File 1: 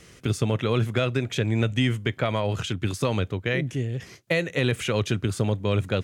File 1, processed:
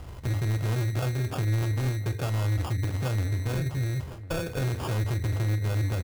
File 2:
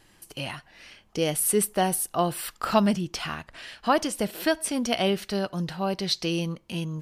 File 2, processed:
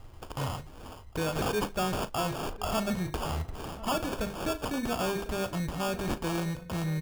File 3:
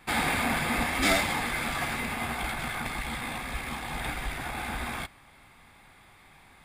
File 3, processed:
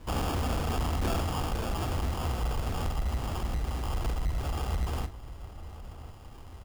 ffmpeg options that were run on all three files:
ffmpeg -i in.wav -filter_complex "[0:a]lowshelf=frequency=130:width_type=q:width=1.5:gain=14,bandreject=frequency=50:width_type=h:width=6,bandreject=frequency=100:width_type=h:width=6,bandreject=frequency=150:width_type=h:width=6,bandreject=frequency=200:width_type=h:width=6,bandreject=frequency=250:width_type=h:width=6,bandreject=frequency=300:width_type=h:width=6,bandreject=frequency=350:width_type=h:width=6,bandreject=frequency=400:width_type=h:width=6,bandreject=frequency=450:width_type=h:width=6,bandreject=frequency=500:width_type=h:width=6,asplit=2[link_01][link_02];[link_02]acompressor=threshold=-32dB:ratio=6,volume=3dB[link_03];[link_01][link_03]amix=inputs=2:normalize=0,acrusher=samples=22:mix=1:aa=0.000001,asoftclip=type=tanh:threshold=-19.5dB,asplit=2[link_04][link_05];[link_05]adelay=38,volume=-14dB[link_06];[link_04][link_06]amix=inputs=2:normalize=0,asplit=2[link_07][link_08];[link_08]adelay=1050,volume=-16dB,highshelf=frequency=4000:gain=-23.6[link_09];[link_07][link_09]amix=inputs=2:normalize=0,volume=-5dB" out.wav

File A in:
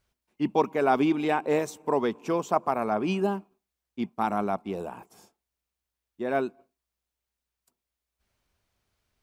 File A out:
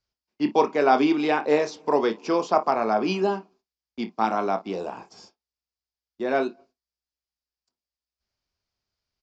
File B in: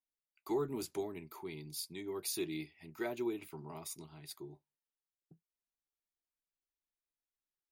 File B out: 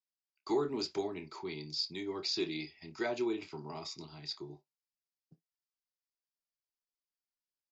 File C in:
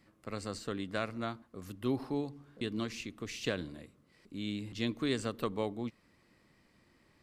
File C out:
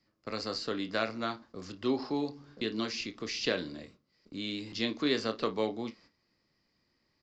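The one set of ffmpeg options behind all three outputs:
ffmpeg -i in.wav -filter_complex "[0:a]acrossover=split=4800[link_01][link_02];[link_02]acompressor=threshold=-54dB:ratio=4:attack=1:release=60[link_03];[link_01][link_03]amix=inputs=2:normalize=0,agate=range=-14dB:threshold=-59dB:ratio=16:detection=peak,equalizer=frequency=4900:width=2.9:gain=13,acrossover=split=200|4500[link_04][link_05][link_06];[link_04]acompressor=threshold=-56dB:ratio=4[link_07];[link_05]aecho=1:1:27|55:0.398|0.141[link_08];[link_07][link_08][link_06]amix=inputs=3:normalize=0,aresample=16000,aresample=44100,volume=3.5dB" out.wav

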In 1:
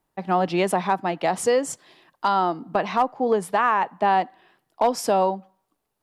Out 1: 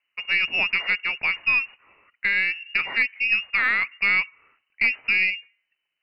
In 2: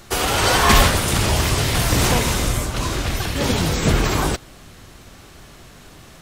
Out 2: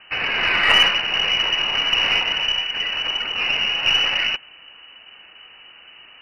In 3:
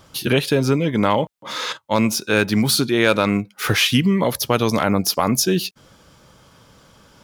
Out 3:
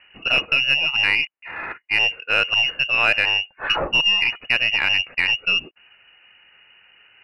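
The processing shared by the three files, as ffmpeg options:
ffmpeg -i in.wav -af "lowpass=frequency=2600:width_type=q:width=0.5098,lowpass=frequency=2600:width_type=q:width=0.6013,lowpass=frequency=2600:width_type=q:width=0.9,lowpass=frequency=2600:width_type=q:width=2.563,afreqshift=-3000,aeval=exprs='1*(cos(1*acos(clip(val(0)/1,-1,1)))-cos(1*PI/2))+0.0355*(cos(6*acos(clip(val(0)/1,-1,1)))-cos(6*PI/2))':channel_layout=same,volume=-1.5dB" out.wav

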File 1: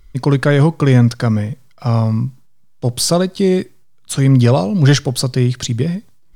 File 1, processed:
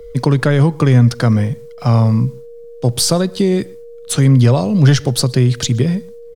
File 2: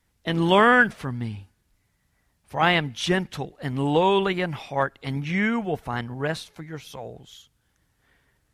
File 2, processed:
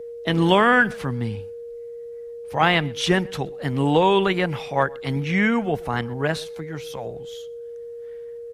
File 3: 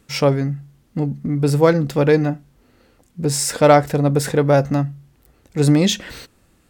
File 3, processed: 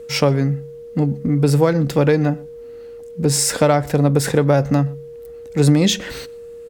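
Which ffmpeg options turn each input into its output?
ffmpeg -i in.wav -filter_complex "[0:a]aeval=exprs='val(0)+0.0158*sin(2*PI*470*n/s)':channel_layout=same,acrossover=split=130[link_01][link_02];[link_02]acompressor=threshold=-15dB:ratio=6[link_03];[link_01][link_03]amix=inputs=2:normalize=0,asplit=2[link_04][link_05];[link_05]adelay=122.4,volume=-25dB,highshelf=frequency=4000:gain=-2.76[link_06];[link_04][link_06]amix=inputs=2:normalize=0,volume=3.5dB" out.wav

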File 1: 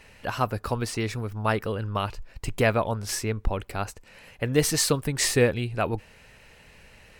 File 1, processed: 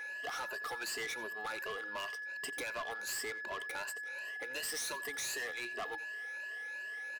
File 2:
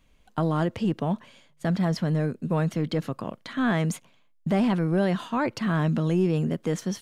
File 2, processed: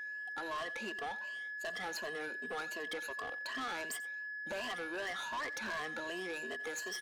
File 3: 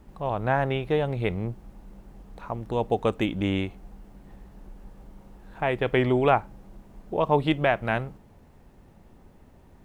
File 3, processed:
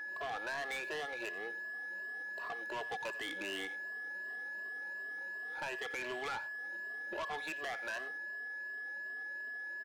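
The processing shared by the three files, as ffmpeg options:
ffmpeg -i in.wav -filter_complex "[0:a]afftfilt=real='re*pow(10,18/40*sin(2*PI*(1.4*log(max(b,1)*sr/1024/100)/log(2)-(2.7)*(pts-256)/sr)))':imag='im*pow(10,18/40*sin(2*PI*(1.4*log(max(b,1)*sr/1024/100)/log(2)-(2.7)*(pts-256)/sr)))':win_size=1024:overlap=0.75,highpass=frequency=370:width=0.5412,highpass=frequency=370:width=1.3066,acrossover=split=930[link_01][link_02];[link_01]acompressor=threshold=-36dB:ratio=8[link_03];[link_03][link_02]amix=inputs=2:normalize=0,alimiter=limit=-19.5dB:level=0:latency=1:release=89,aeval=exprs='val(0)+0.0158*sin(2*PI*1700*n/s)':channel_layout=same,asoftclip=type=tanh:threshold=-32dB,aecho=1:1:89:0.133,volume=-3.5dB" out.wav

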